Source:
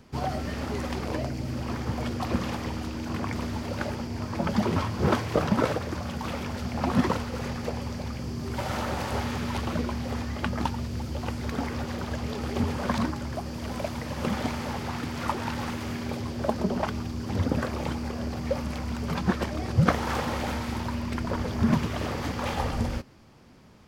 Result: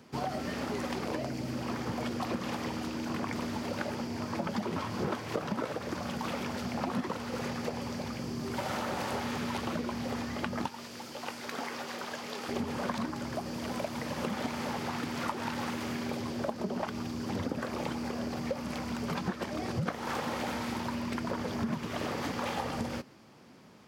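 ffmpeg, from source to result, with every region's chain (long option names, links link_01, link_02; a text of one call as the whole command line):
ffmpeg -i in.wav -filter_complex "[0:a]asettb=1/sr,asplit=3[link_01][link_02][link_03];[link_01]atrim=end=10.684[link_04];[link_02]atrim=start=10.68:end=12.49,asetpts=PTS-STARTPTS,afade=type=in:duration=0.004:curve=qsin,afade=type=out:start_time=1.806:duration=0.004:curve=qsin,highpass=frequency=760:poles=1,asplit=2[link_05][link_06];[link_06]adelay=20,volume=-11.5dB[link_07];[link_05][link_07]amix=inputs=2:normalize=0,atrim=end_sample=79821[link_08];[link_03]atrim=start=12.486[link_09];[link_04][link_08]acrossfade=duration=0.004:curve1=hsin:curve2=qsin[link_10];[link_10][link_09]acrossfade=duration=0.004:curve1=qsin:curve2=hsin,highpass=160,acompressor=threshold=-30dB:ratio=6" out.wav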